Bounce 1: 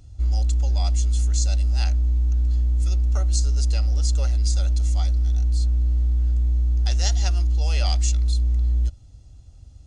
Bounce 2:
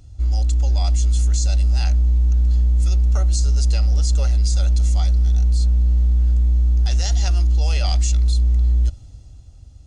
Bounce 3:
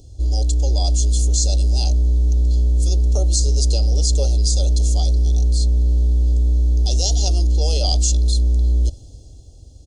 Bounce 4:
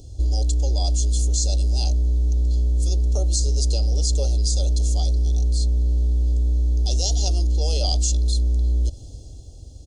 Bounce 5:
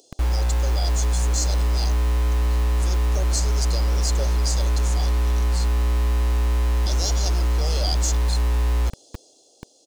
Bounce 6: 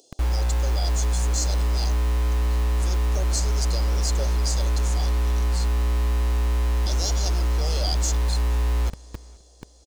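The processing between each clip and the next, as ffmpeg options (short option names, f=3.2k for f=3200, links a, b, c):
-af "dynaudnorm=f=190:g=11:m=11.5dB,alimiter=limit=-13.5dB:level=0:latency=1:release=18,volume=2dB"
-af "firequalizer=gain_entry='entry(170,0);entry(290,7);entry(420,12);entry(1700,-27);entry(3100,2);entry(4400,7)':delay=0.05:min_phase=1"
-af "acompressor=threshold=-19dB:ratio=6,volume=2dB"
-filter_complex "[0:a]acrossover=split=370[a][b];[a]acrusher=bits=4:mix=0:aa=0.000001[c];[c][b]amix=inputs=2:normalize=0,asoftclip=type=tanh:threshold=-12dB"
-filter_complex "[0:a]asplit=2[a][b];[b]adelay=471,lowpass=f=4.7k:p=1,volume=-24dB,asplit=2[c][d];[d]adelay=471,lowpass=f=4.7k:p=1,volume=0.33[e];[a][c][e]amix=inputs=3:normalize=0,volume=-1.5dB"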